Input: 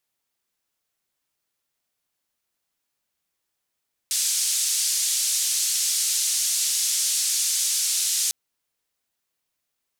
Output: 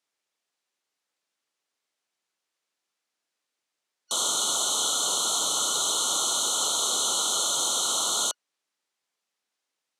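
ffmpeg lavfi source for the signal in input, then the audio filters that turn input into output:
-f lavfi -i "anoisesrc=c=white:d=4.2:r=44100:seed=1,highpass=f=5700,lowpass=f=7800,volume=-9.5dB"
-filter_complex "[0:a]afftfilt=real='real(if(lt(b,272),68*(eq(floor(b/68),0)*2+eq(floor(b/68),1)*0+eq(floor(b/68),2)*3+eq(floor(b/68),3)*1)+mod(b,68),b),0)':imag='imag(if(lt(b,272),68*(eq(floor(b/68),0)*2+eq(floor(b/68),1)*0+eq(floor(b/68),2)*3+eq(floor(b/68),3)*1)+mod(b,68),b),0)':win_size=2048:overlap=0.75,highpass=270,lowpass=7600,acrossover=split=700|1200|5100[s0][s1][s2][s3];[s1]acrusher=bits=5:mode=log:mix=0:aa=0.000001[s4];[s0][s4][s2][s3]amix=inputs=4:normalize=0"

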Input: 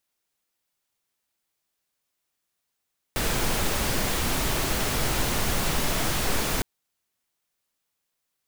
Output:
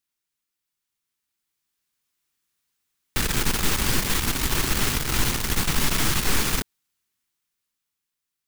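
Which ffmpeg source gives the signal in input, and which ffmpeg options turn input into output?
-f lavfi -i "anoisesrc=c=pink:a=0.288:d=3.46:r=44100:seed=1"
-af "equalizer=f=620:w=1.7:g=-11,dynaudnorm=f=300:g=11:m=2.24,aeval=exprs='(tanh(6.31*val(0)+0.7)-tanh(0.7))/6.31':c=same"

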